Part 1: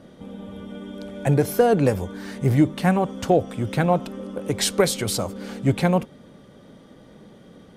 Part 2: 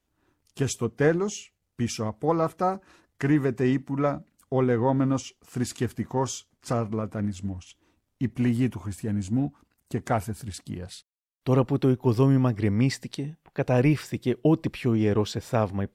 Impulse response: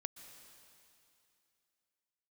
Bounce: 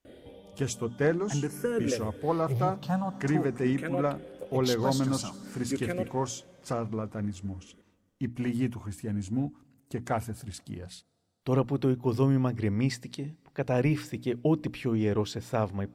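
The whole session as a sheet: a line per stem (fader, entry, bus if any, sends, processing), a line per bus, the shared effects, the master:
-1.0 dB, 0.05 s, send -12 dB, barber-pole phaser +0.5 Hz; auto duck -12 dB, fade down 0.30 s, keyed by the second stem
-4.5 dB, 0.00 s, send -19.5 dB, hum notches 60/120/180/240/300 Hz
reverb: on, RT60 2.7 s, pre-delay 113 ms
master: none

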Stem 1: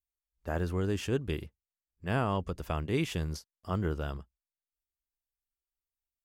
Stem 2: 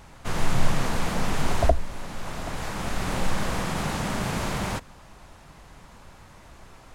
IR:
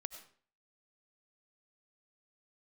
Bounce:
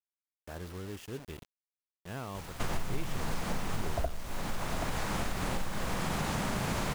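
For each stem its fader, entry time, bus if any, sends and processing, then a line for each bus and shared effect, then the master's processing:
-12.0 dB, 0.00 s, send -16.5 dB, none
0.0 dB, 2.35 s, send -9 dB, compression 12:1, threshold -30 dBFS, peak gain reduction 18.5 dB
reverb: on, RT60 0.45 s, pre-delay 55 ms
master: bit crusher 8-bit

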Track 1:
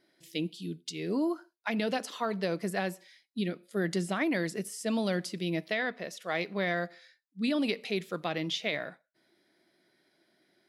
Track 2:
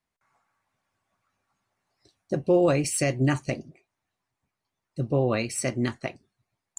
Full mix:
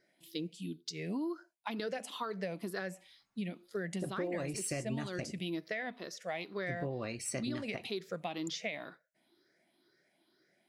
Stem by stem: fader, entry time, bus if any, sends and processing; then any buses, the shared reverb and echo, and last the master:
-4.5 dB, 0.00 s, no send, drifting ripple filter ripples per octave 0.55, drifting +2.1 Hz, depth 11 dB
-6.0 dB, 1.70 s, no send, none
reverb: none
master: compression 6:1, threshold -34 dBFS, peak gain reduction 12.5 dB

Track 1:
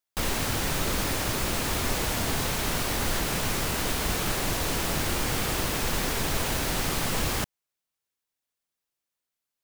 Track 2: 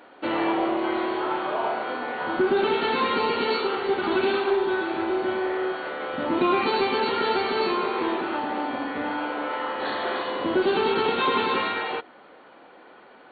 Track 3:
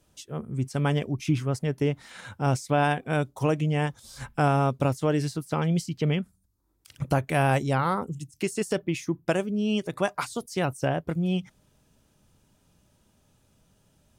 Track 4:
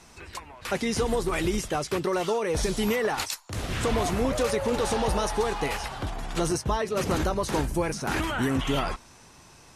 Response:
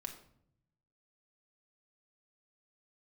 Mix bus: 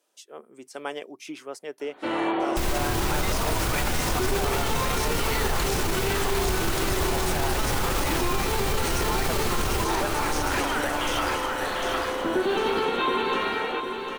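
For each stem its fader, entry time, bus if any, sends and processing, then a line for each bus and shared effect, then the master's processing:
+2.5 dB, 2.40 s, no send, echo send -9 dB, bass shelf 110 Hz +8.5 dB
-1.5 dB, 1.80 s, no send, echo send -9 dB, none
-3.5 dB, 0.00 s, no send, no echo send, high-pass 360 Hz 24 dB/octave
+2.5 dB, 2.40 s, no send, echo send -4.5 dB, high-pass 790 Hz 24 dB/octave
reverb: none
echo: feedback delay 752 ms, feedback 53%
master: peak limiter -15.5 dBFS, peak gain reduction 10 dB

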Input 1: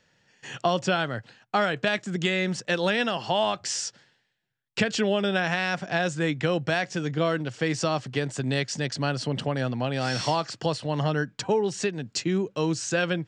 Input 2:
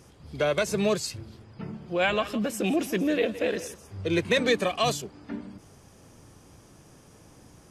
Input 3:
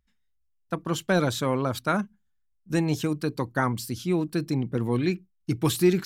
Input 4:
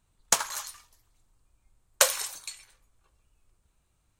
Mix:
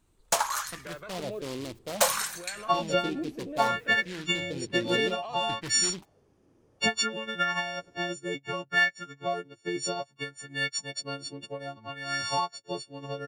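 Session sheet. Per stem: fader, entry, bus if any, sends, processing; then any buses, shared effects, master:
-3.0 dB, 2.05 s, no send, partials quantised in pitch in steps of 4 st; upward expansion 2.5:1, over -34 dBFS
-15.0 dB, 0.45 s, no send, treble shelf 4.3 kHz -12 dB; peak limiter -21.5 dBFS, peak gain reduction 8.5 dB
-13.5 dB, 0.00 s, no send, resonant high shelf 1.6 kHz -14 dB, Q 1.5; valve stage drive 18 dB, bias 0.45; delay time shaken by noise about 3.1 kHz, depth 0.18 ms
+1.5 dB, 0.00 s, no send, saturation -19 dBFS, distortion -6 dB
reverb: none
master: sweeping bell 0.62 Hz 320–1800 Hz +12 dB

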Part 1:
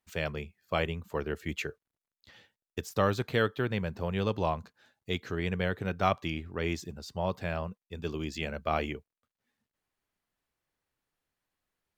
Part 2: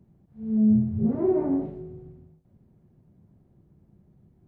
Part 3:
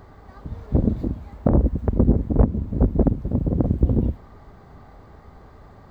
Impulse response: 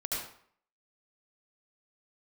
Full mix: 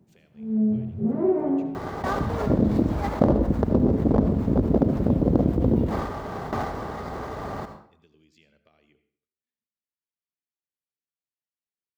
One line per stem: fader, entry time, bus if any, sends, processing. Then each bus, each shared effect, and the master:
-14.0 dB, 0.00 s, send -13.5 dB, treble shelf 5.9 kHz -6 dB; compression 16:1, threshold -38 dBFS, peak gain reduction 18.5 dB; peaking EQ 950 Hz -12 dB 1.8 oct
+1.5 dB, 0.00 s, send -11.5 dB, none
-2.5 dB, 1.75 s, send -10 dB, median filter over 15 samples; gate with hold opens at -34 dBFS; level flattener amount 70%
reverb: on, RT60 0.60 s, pre-delay 67 ms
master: high-pass 250 Hz 6 dB/octave

